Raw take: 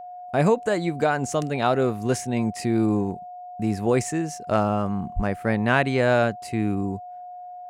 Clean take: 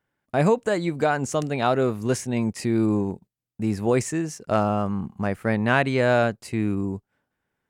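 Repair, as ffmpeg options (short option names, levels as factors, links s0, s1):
-filter_complex "[0:a]bandreject=f=720:w=30,asplit=3[s0][s1][s2];[s0]afade=t=out:st=5.15:d=0.02[s3];[s1]highpass=f=140:w=0.5412,highpass=f=140:w=1.3066,afade=t=in:st=5.15:d=0.02,afade=t=out:st=5.27:d=0.02[s4];[s2]afade=t=in:st=5.27:d=0.02[s5];[s3][s4][s5]amix=inputs=3:normalize=0"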